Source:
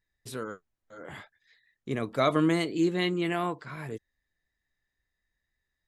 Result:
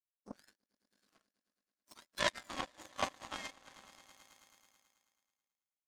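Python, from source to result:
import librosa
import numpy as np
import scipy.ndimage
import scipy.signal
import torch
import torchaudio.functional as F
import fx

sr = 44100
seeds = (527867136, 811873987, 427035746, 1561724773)

y = fx.octave_mirror(x, sr, pivot_hz=1500.0)
y = fx.echo_swell(y, sr, ms=108, loudest=5, wet_db=-13)
y = fx.env_lowpass_down(y, sr, base_hz=2600.0, full_db=-30.5)
y = fx.power_curve(y, sr, exponent=3.0)
y = F.gain(torch.from_numpy(y), 7.0).numpy()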